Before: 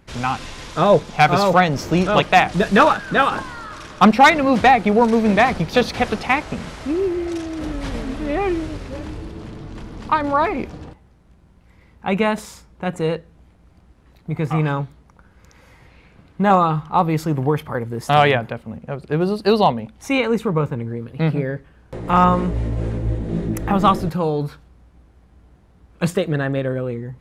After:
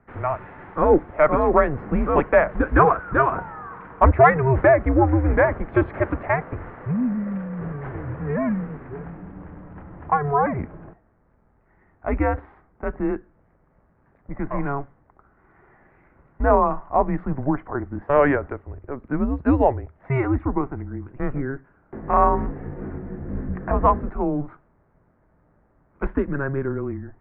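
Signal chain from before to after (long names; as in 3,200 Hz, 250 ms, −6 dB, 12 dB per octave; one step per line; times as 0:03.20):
single-sideband voice off tune −140 Hz 180–2,000 Hz
level −2 dB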